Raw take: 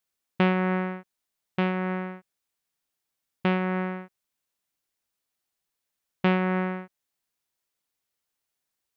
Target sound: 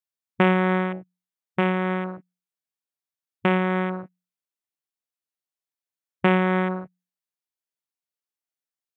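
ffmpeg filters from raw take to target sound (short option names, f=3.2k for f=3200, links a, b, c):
-af "highpass=120,bandreject=f=60:t=h:w=6,bandreject=f=120:t=h:w=6,bandreject=f=180:t=h:w=6,afwtdn=0.0158,volume=5dB"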